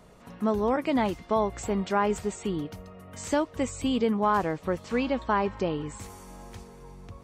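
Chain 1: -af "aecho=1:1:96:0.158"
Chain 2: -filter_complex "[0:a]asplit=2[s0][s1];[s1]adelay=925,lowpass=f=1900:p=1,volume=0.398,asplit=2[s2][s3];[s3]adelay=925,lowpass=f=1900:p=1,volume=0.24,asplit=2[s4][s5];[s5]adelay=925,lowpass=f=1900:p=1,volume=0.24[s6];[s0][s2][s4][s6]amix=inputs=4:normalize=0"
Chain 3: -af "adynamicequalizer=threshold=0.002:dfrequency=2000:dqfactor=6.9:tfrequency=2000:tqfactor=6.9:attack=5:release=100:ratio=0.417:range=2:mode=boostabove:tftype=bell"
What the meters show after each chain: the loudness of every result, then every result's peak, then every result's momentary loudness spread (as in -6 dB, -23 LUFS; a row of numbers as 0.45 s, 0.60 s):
-28.0 LUFS, -28.0 LUFS, -28.0 LUFS; -12.5 dBFS, -12.5 dBFS, -12.5 dBFS; 19 LU, 10 LU, 19 LU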